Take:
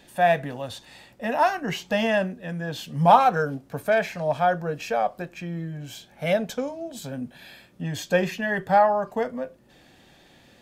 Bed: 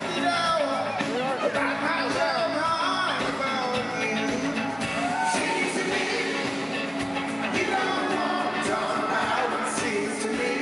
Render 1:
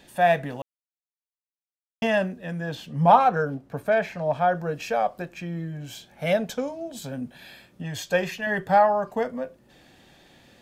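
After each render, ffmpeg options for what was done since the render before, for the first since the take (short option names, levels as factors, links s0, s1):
-filter_complex "[0:a]asettb=1/sr,asplit=3[s0][s1][s2];[s0]atrim=end=2.754[s3];[s1]atrim=start=2.75:end=4.55,asetpts=PTS-STARTPTS,afade=t=in:d=0.004:c=qsin,afade=t=out:st=1.796:d=0.004:c=qsin,highshelf=f=3400:g=-9.5[s4];[s2]atrim=start=4.546[s5];[s3][s4]acrossfade=d=0.004:c1=hsin:c2=qsin[s6];[s6][s5]acrossfade=d=0.004:c1=qsin:c2=hsin,asettb=1/sr,asplit=3[s7][s8][s9];[s7]atrim=end=7.824[s10];[s8]atrim=start=7.82:end=8.47,asetpts=PTS-STARTPTS,afade=t=in:d=0.004:c=qsin,afade=t=out:st=0.646:d=0.004:c=qsin,equalizer=f=250:w=1.5:g=-9.5[s11];[s9]atrim=start=8.466[s12];[s10][s11]acrossfade=d=0.004:c1=hsin:c2=qsin[s13];[s13][s12]acrossfade=d=0.004:c1=qsin:c2=hsin,asplit=3[s14][s15][s16];[s14]atrim=end=0.62,asetpts=PTS-STARTPTS,afade=t=out:st=0.616:d=0.004:c=hsin[s17];[s15]atrim=start=0.62:end=2.02,asetpts=PTS-STARTPTS,volume=0[s18];[s16]atrim=start=2.02,asetpts=PTS-STARTPTS,afade=t=in:d=0.004:c=hsin[s19];[s17][s18][s19]concat=n=3:v=0:a=1"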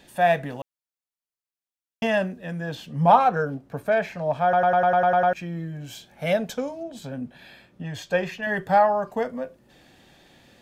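-filter_complex "[0:a]asettb=1/sr,asplit=3[s0][s1][s2];[s0]atrim=end=6.834[s3];[s1]atrim=start=6.83:end=8.43,asetpts=PTS-STARTPTS,afade=t=in:d=0.004:c=qsin,afade=t=out:st=1.596:d=0.004:c=qsin,highshelf=f=5400:g=-10.5[s4];[s2]atrim=start=8.426[s5];[s3][s4]acrossfade=d=0.004:c1=hsin:c2=qsin[s6];[s6][s5]acrossfade=d=0.004:c1=qsin:c2=hsin,asplit=10[s7][s8][s9][s10][s11][s12][s13][s14][s15][s16];[s7]atrim=end=4.532[s17];[s8]atrim=start=4.428:end=4.532[s18];[s9]atrim=start=4.428:end=4.532[s19];[s10]atrim=start=4.428:end=4.532[s20];[s11]atrim=start=4.428:end=4.532[s21];[s12]atrim=start=4.428:end=4.532[s22];[s13]atrim=start=4.428:end=4.532[s23];[s14]atrim=start=4.428:end=4.532[s24];[s15]atrim=start=4.428:end=4.532[s25];[s16]atrim=start=5.328[s26];[s17][s18]acrossfade=d=0.004:c1=hsin:c2=hsin[s27];[s27][s19]acrossfade=d=0.004:c1=hsin:c2=hsin[s28];[s28][s20]acrossfade=d=0.004:c1=hsin:c2=hsin[s29];[s29][s21]acrossfade=d=0.004:c1=hsin:c2=hsin[s30];[s30][s22]acrossfade=d=0.004:c1=hsin:c2=hsin[s31];[s31][s23]acrossfade=d=0.004:c1=hsin:c2=hsin[s32];[s32][s24]acrossfade=d=0.004:c1=hsin:c2=hsin[s33];[s33][s25]acrossfade=d=0.004:c1=hsin:c2=hsin[s34];[s34][s26]acrossfade=d=0.004:c1=hsin:c2=hsin"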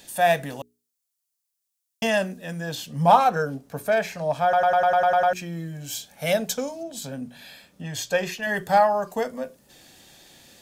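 -af "bass=f=250:g=-1,treble=f=4000:g=14,bandreject=f=60:t=h:w=6,bandreject=f=120:t=h:w=6,bandreject=f=180:t=h:w=6,bandreject=f=240:t=h:w=6,bandreject=f=300:t=h:w=6,bandreject=f=360:t=h:w=6,bandreject=f=420:t=h:w=6"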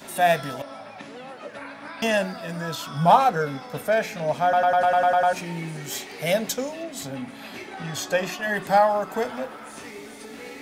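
-filter_complex "[1:a]volume=0.224[s0];[0:a][s0]amix=inputs=2:normalize=0"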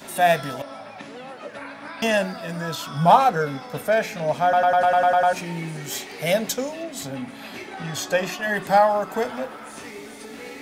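-af "volume=1.19"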